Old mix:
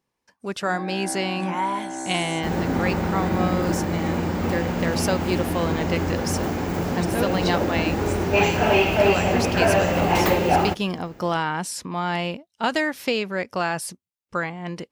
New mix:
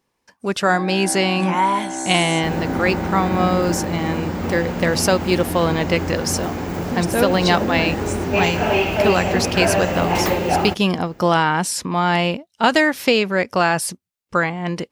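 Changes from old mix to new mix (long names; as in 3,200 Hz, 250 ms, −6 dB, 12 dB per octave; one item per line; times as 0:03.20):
speech +7.5 dB
first sound +4.0 dB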